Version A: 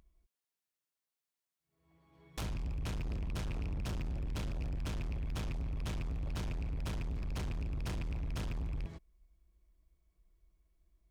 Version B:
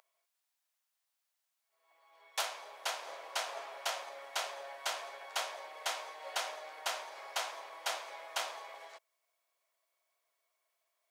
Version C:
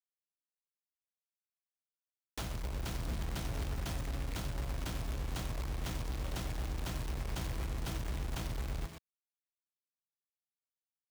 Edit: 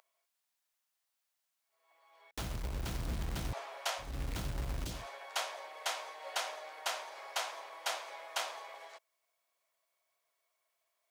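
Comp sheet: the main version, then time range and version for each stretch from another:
B
0:02.31–0:03.53: punch in from C
0:04.09–0:04.95: punch in from C, crossfade 0.24 s
not used: A

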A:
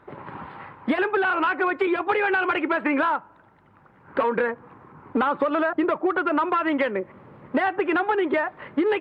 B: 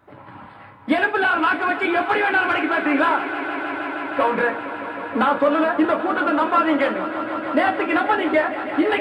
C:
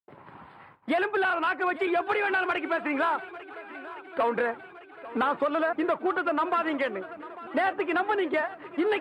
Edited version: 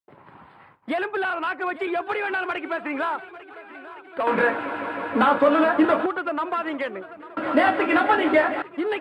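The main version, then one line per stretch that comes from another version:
C
0:04.27–0:06.06: punch in from B
0:07.37–0:08.62: punch in from B
not used: A

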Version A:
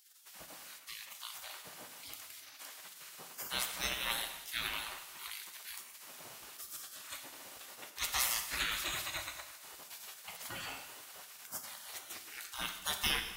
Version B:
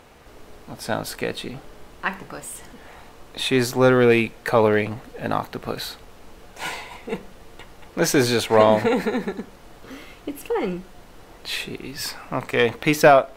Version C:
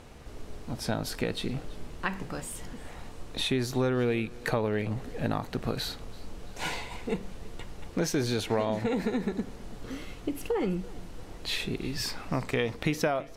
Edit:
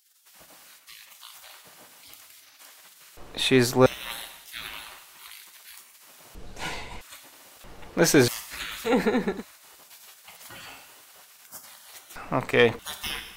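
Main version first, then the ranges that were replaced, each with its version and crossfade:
A
0:03.17–0:03.86: punch in from B
0:06.35–0:07.01: punch in from C
0:07.64–0:08.28: punch in from B
0:08.89–0:09.40: punch in from B, crossfade 0.10 s
0:12.16–0:12.79: punch in from B

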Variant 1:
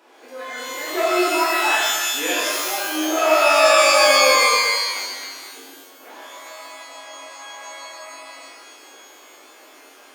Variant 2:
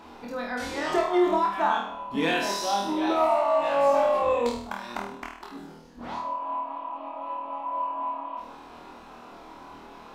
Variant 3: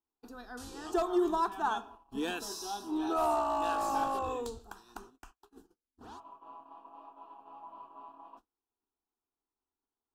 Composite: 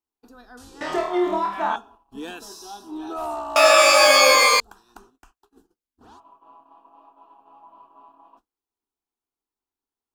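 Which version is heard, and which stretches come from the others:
3
0:00.81–0:01.76: punch in from 2
0:03.56–0:04.60: punch in from 1

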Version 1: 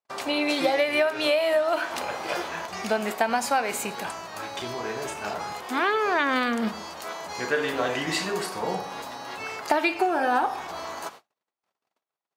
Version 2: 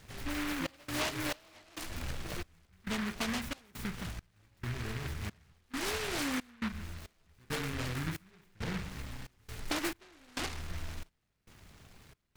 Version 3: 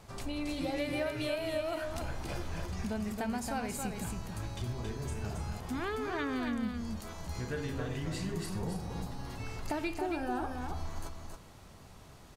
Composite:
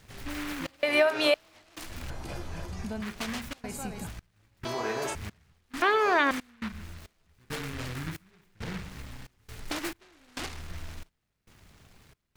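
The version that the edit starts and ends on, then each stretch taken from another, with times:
2
0:00.83–0:01.34: punch in from 1
0:02.10–0:03.02: punch in from 3
0:03.64–0:04.07: punch in from 3
0:04.65–0:05.15: punch in from 1
0:05.82–0:06.31: punch in from 1

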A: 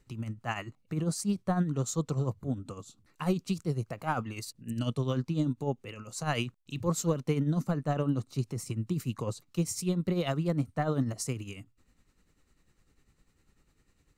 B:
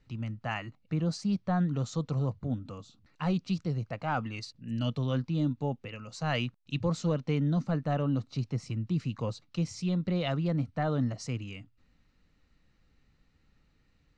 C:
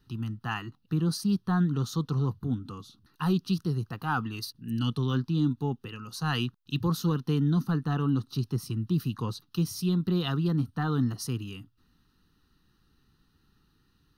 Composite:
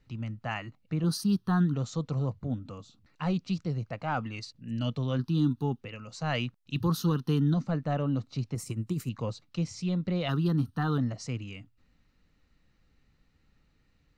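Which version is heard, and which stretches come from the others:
B
0:01.04–0:01.74: punch in from C
0:05.19–0:05.81: punch in from C
0:06.76–0:07.54: punch in from C
0:08.55–0:09.09: punch in from A
0:10.29–0:10.98: punch in from C

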